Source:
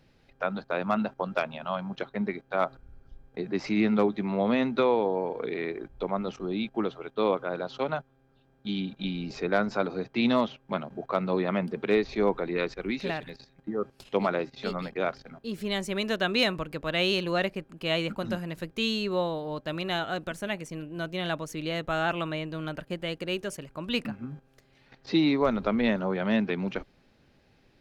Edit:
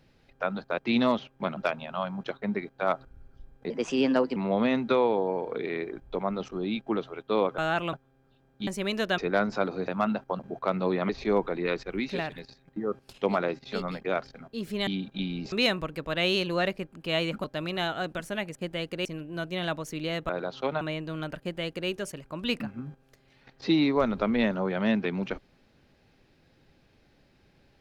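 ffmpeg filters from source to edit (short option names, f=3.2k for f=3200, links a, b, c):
-filter_complex "[0:a]asplit=19[a][b][c][d][e][f][g][h][i][j][k][l][m][n][o][p][q][r][s];[a]atrim=end=0.782[t];[b]atrim=start=10.068:end=10.862[u];[c]atrim=start=1.288:end=3.424[v];[d]atrim=start=3.42:end=4.24,asetpts=PTS-STARTPTS,asetrate=54684,aresample=44100[w];[e]atrim=start=4.236:end=7.462[x];[f]atrim=start=21.908:end=22.262[y];[g]atrim=start=7.978:end=8.722[z];[h]atrim=start=15.778:end=16.292[aa];[i]atrim=start=9.368:end=10.072[ab];[j]atrim=start=0.778:end=1.292[ac];[k]atrim=start=10.858:end=11.562[ad];[l]atrim=start=11.998:end=15.782[ae];[m]atrim=start=8.718:end=9.372[af];[n]atrim=start=16.288:end=18.212[ag];[o]atrim=start=19.558:end=20.672[ah];[p]atrim=start=22.838:end=23.342[ai];[q]atrim=start=20.668:end=21.912[aj];[r]atrim=start=7.458:end=7.982[ak];[s]atrim=start=22.258[al];[t][u]acrossfade=d=0.004:c1=hsin:c2=hsin[am];[am][v]acrossfade=d=0.004:c1=hsin:c2=hsin[an];[an][w]acrossfade=d=0.004:c1=hsin:c2=hsin[ao];[ao][x]acrossfade=d=0.004:c1=hsin:c2=hsin[ap];[ap][y]acrossfade=d=0.004:c1=hsin:c2=hsin[aq];[aq][z]acrossfade=d=0.004:c1=hsin:c2=hsin[ar];[ar][aa]acrossfade=d=0.004:c1=hsin:c2=hsin[as];[as][ab]acrossfade=d=0.004:c1=hsin:c2=hsin[at];[at][ac]acrossfade=d=0.004:c1=hsin:c2=hsin[au];[au][ad]acrossfade=d=0.004:c1=hsin:c2=hsin[av];[av][ae]acrossfade=d=0.004:c1=hsin:c2=hsin[aw];[aw][af]acrossfade=d=0.004:c1=hsin:c2=hsin[ax];[ax][ag]acrossfade=d=0.004:c1=hsin:c2=hsin[ay];[ay][ah]acrossfade=d=0.004:c1=hsin:c2=hsin[az];[az][ai]acrossfade=d=0.004:c1=hsin:c2=hsin[ba];[ba][aj]acrossfade=d=0.004:c1=hsin:c2=hsin[bb];[bb][ak]acrossfade=d=0.004:c1=hsin:c2=hsin[bc];[bc][al]acrossfade=d=0.004:c1=hsin:c2=hsin"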